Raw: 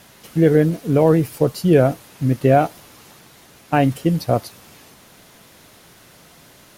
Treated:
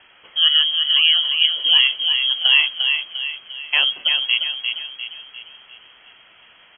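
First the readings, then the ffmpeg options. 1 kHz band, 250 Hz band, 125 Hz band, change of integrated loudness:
−15.0 dB, below −35 dB, below −40 dB, +2.0 dB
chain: -filter_complex "[0:a]lowshelf=frequency=320:gain=-4.5,asplit=2[link_01][link_02];[link_02]adelay=350,lowpass=frequency=2600:poles=1,volume=-5dB,asplit=2[link_03][link_04];[link_04]adelay=350,lowpass=frequency=2600:poles=1,volume=0.47,asplit=2[link_05][link_06];[link_06]adelay=350,lowpass=frequency=2600:poles=1,volume=0.47,asplit=2[link_07][link_08];[link_08]adelay=350,lowpass=frequency=2600:poles=1,volume=0.47,asplit=2[link_09][link_10];[link_10]adelay=350,lowpass=frequency=2600:poles=1,volume=0.47,asplit=2[link_11][link_12];[link_12]adelay=350,lowpass=frequency=2600:poles=1,volume=0.47[link_13];[link_03][link_05][link_07][link_09][link_11][link_13]amix=inputs=6:normalize=0[link_14];[link_01][link_14]amix=inputs=2:normalize=0,lowpass=frequency=2900:width_type=q:width=0.5098,lowpass=frequency=2900:width_type=q:width=0.6013,lowpass=frequency=2900:width_type=q:width=0.9,lowpass=frequency=2900:width_type=q:width=2.563,afreqshift=-3400"

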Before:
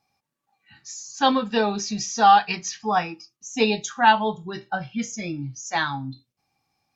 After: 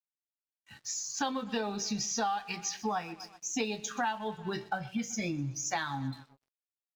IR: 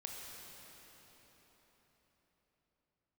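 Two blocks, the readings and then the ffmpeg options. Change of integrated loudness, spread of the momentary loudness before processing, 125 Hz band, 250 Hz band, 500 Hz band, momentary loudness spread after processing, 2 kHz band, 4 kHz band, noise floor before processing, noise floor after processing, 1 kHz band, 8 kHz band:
−12.0 dB, 17 LU, −5.0 dB, −8.5 dB, −11.5 dB, 6 LU, −11.5 dB, −10.0 dB, −82 dBFS, below −85 dBFS, −15.0 dB, can't be measured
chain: -af "aecho=1:1:126|252|378:0.0794|0.0397|0.0199,acompressor=threshold=-32dB:ratio=8,aeval=exprs='sgn(val(0))*max(abs(val(0))-0.00106,0)':channel_layout=same,volume=2dB"

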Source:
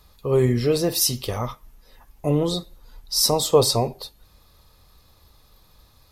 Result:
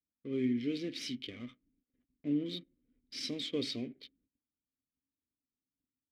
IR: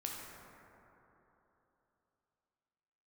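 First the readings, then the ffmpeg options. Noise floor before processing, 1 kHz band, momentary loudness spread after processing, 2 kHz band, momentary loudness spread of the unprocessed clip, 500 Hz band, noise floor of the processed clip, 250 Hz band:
−56 dBFS, −34.5 dB, 14 LU, −10.0 dB, 13 LU, −20.5 dB, below −85 dBFS, −8.5 dB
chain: -filter_complex "[0:a]adynamicequalizer=threshold=0.0158:dfrequency=3800:dqfactor=0.85:tfrequency=3800:tqfactor=0.85:attack=5:release=100:ratio=0.375:range=3:mode=boostabove:tftype=bell,adynamicsmooth=sensitivity=7.5:basefreq=540,agate=range=-19dB:threshold=-49dB:ratio=16:detection=peak,asplit=3[link_01][link_02][link_03];[link_01]bandpass=frequency=270:width_type=q:width=8,volume=0dB[link_04];[link_02]bandpass=frequency=2290:width_type=q:width=8,volume=-6dB[link_05];[link_03]bandpass=frequency=3010:width_type=q:width=8,volume=-9dB[link_06];[link_04][link_05][link_06]amix=inputs=3:normalize=0,volume=-1.5dB"

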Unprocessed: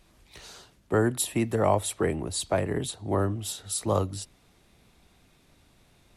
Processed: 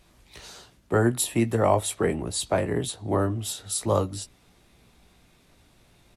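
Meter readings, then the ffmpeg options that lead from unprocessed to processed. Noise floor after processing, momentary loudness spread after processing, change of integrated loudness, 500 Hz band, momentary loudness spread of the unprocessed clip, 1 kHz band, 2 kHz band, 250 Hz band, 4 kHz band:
−60 dBFS, 16 LU, +2.5 dB, +2.0 dB, 15 LU, +2.0 dB, +2.0 dB, +2.5 dB, +2.0 dB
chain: -filter_complex "[0:a]asplit=2[link_01][link_02];[link_02]adelay=17,volume=-8.5dB[link_03];[link_01][link_03]amix=inputs=2:normalize=0,volume=1.5dB"

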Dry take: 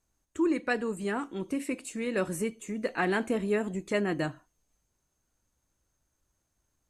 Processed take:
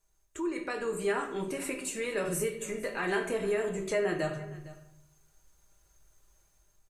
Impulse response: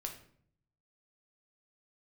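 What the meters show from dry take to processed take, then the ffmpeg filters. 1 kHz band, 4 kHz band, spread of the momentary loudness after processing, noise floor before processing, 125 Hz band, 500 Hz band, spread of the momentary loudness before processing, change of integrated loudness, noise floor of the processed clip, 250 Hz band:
−2.0 dB, 0.0 dB, 8 LU, −79 dBFS, −2.0 dB, +0.5 dB, 6 LU, −1.5 dB, −69 dBFS, −6.0 dB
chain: -filter_complex "[0:a]equalizer=frequency=220:width=2.3:gain=-13.5,alimiter=limit=-23dB:level=0:latency=1:release=90,dynaudnorm=framelen=220:gausssize=5:maxgain=8dB[link_01];[1:a]atrim=start_sample=2205[link_02];[link_01][link_02]afir=irnorm=-1:irlink=0,acompressor=threshold=-44dB:ratio=1.5,highshelf=frequency=9900:gain=5.5,aecho=1:1:5:0.42,aecho=1:1:458:0.112,volume=2dB"

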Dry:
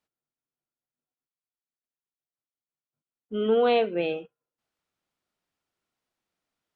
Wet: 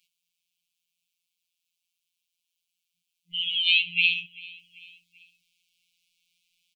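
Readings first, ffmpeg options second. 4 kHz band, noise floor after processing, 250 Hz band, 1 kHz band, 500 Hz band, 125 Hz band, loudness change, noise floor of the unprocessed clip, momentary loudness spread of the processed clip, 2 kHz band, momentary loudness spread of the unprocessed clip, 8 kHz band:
+16.0 dB, −83 dBFS, below −20 dB, below −40 dB, below −40 dB, −9.5 dB, +2.0 dB, below −85 dBFS, 19 LU, +13.0 dB, 14 LU, can't be measured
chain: -filter_complex "[0:a]highshelf=frequency=1900:width_type=q:width=3:gain=13.5,afftfilt=real='re*(1-between(b*sr/4096,200,2100))':imag='im*(1-between(b*sr/4096,200,2100))':win_size=4096:overlap=0.75,acrossover=split=180|1200[link_01][link_02][link_03];[link_01]acompressor=threshold=-57dB:ratio=4[link_04];[link_02]acompressor=threshold=-55dB:ratio=4[link_05];[link_03]acompressor=threshold=-16dB:ratio=4[link_06];[link_04][link_05][link_06]amix=inputs=3:normalize=0,afftfilt=real='hypot(re,im)*cos(PI*b)':imag='0':win_size=1024:overlap=0.75,asplit=2[link_07][link_08];[link_08]aecho=0:1:389|778|1167:0.0794|0.0397|0.0199[link_09];[link_07][link_09]amix=inputs=2:normalize=0,volume=2.5dB"

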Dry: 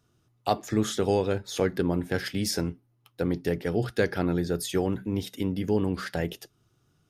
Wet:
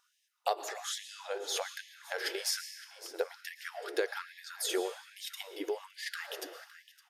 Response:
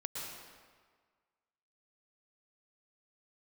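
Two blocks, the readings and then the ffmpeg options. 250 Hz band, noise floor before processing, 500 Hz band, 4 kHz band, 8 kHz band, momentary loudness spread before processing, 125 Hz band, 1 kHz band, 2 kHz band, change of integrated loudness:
−20.0 dB, −69 dBFS, −9.5 dB, −1.0 dB, −1.0 dB, 6 LU, below −40 dB, −6.0 dB, −3.5 dB, −9.0 dB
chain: -filter_complex "[0:a]aecho=1:1:562|1124|1686:0.112|0.0404|0.0145,acompressor=threshold=-29dB:ratio=6,asplit=2[link_01][link_02];[1:a]atrim=start_sample=2205[link_03];[link_02][link_03]afir=irnorm=-1:irlink=0,volume=-7dB[link_04];[link_01][link_04]amix=inputs=2:normalize=0,afftfilt=real='re*gte(b*sr/1024,300*pow(1700/300,0.5+0.5*sin(2*PI*1.2*pts/sr)))':imag='im*gte(b*sr/1024,300*pow(1700/300,0.5+0.5*sin(2*PI*1.2*pts/sr)))':win_size=1024:overlap=0.75"

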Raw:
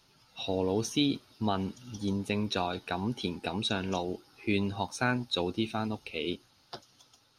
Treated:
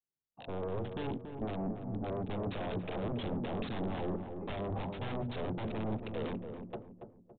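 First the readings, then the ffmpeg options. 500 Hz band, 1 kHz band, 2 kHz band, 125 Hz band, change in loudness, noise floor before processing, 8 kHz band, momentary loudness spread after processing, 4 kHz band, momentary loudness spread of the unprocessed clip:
−3.5 dB, −6.5 dB, −11.5 dB, −2.5 dB, −6.0 dB, −65 dBFS, below −35 dB, 7 LU, −15.5 dB, 10 LU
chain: -filter_complex "[0:a]agate=range=-37dB:threshold=-52dB:ratio=16:detection=peak,bandreject=frequency=60:width_type=h:width=6,bandreject=frequency=120:width_type=h:width=6,bandreject=frequency=180:width_type=h:width=6,bandreject=frequency=240:width_type=h:width=6,dynaudnorm=framelen=660:gausssize=5:maxgain=9dB,asplit=2[link_01][link_02];[link_02]alimiter=limit=-15.5dB:level=0:latency=1:release=67,volume=2dB[link_03];[link_01][link_03]amix=inputs=2:normalize=0,aeval=exprs='0.0841*(abs(mod(val(0)/0.0841+3,4)-2)-1)':channel_layout=same,acrossover=split=840[link_04][link_05];[link_05]acrusher=bits=3:mix=0:aa=0.000001[link_06];[link_04][link_06]amix=inputs=2:normalize=0,asoftclip=type=tanh:threshold=-24.5dB,asplit=2[link_07][link_08];[link_08]adelay=281,lowpass=frequency=990:poles=1,volume=-6dB,asplit=2[link_09][link_10];[link_10]adelay=281,lowpass=frequency=990:poles=1,volume=0.43,asplit=2[link_11][link_12];[link_12]adelay=281,lowpass=frequency=990:poles=1,volume=0.43,asplit=2[link_13][link_14];[link_14]adelay=281,lowpass=frequency=990:poles=1,volume=0.43,asplit=2[link_15][link_16];[link_16]adelay=281,lowpass=frequency=990:poles=1,volume=0.43[link_17];[link_07][link_09][link_11][link_13][link_15][link_17]amix=inputs=6:normalize=0,aresample=8000,aresample=44100,volume=-6dB"

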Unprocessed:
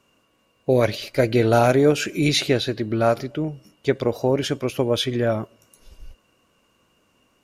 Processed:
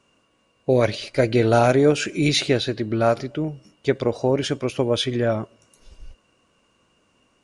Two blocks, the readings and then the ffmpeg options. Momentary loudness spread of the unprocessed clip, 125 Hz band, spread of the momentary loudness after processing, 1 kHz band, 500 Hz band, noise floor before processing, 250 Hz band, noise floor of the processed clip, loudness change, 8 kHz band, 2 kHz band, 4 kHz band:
11 LU, 0.0 dB, 11 LU, 0.0 dB, 0.0 dB, −65 dBFS, 0.0 dB, −65 dBFS, 0.0 dB, 0.0 dB, 0.0 dB, 0.0 dB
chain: -af "aresample=22050,aresample=44100"

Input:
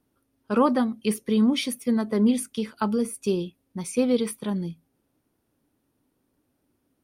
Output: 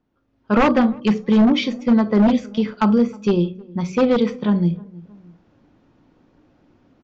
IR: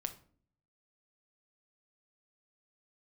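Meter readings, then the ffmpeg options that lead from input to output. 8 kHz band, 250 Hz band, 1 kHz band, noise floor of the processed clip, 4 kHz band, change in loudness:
below −10 dB, +7.0 dB, +7.0 dB, −66 dBFS, +4.5 dB, +6.5 dB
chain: -filter_complex "[0:a]asplit=2[link_01][link_02];[link_02]equalizer=frequency=390:width=6.8:gain=-6.5[link_03];[1:a]atrim=start_sample=2205,atrim=end_sample=3969,lowpass=6900[link_04];[link_03][link_04]afir=irnorm=-1:irlink=0,volume=7dB[link_05];[link_01][link_05]amix=inputs=2:normalize=0,aeval=exprs='0.398*(abs(mod(val(0)/0.398+3,4)-2)-1)':channel_layout=same,asplit=2[link_06][link_07];[link_07]adelay=314,lowpass=frequency=1000:poles=1,volume=-23.5dB,asplit=2[link_08][link_09];[link_09]adelay=314,lowpass=frequency=1000:poles=1,volume=0.29[link_10];[link_06][link_08][link_10]amix=inputs=3:normalize=0,dynaudnorm=framelen=110:gausssize=5:maxgain=15dB,highshelf=frequency=4100:gain=-11.5,aresample=16000,aresample=44100,bandreject=frequency=61.62:width_type=h:width=4,bandreject=frequency=123.24:width_type=h:width=4,bandreject=frequency=184.86:width_type=h:width=4,bandreject=frequency=246.48:width_type=h:width=4,bandreject=frequency=308.1:width_type=h:width=4,bandreject=frequency=369.72:width_type=h:width=4,bandreject=frequency=431.34:width_type=h:width=4,bandreject=frequency=492.96:width_type=h:width=4,bandreject=frequency=554.58:width_type=h:width=4,bandreject=frequency=616.2:width_type=h:width=4,volume=-7dB"

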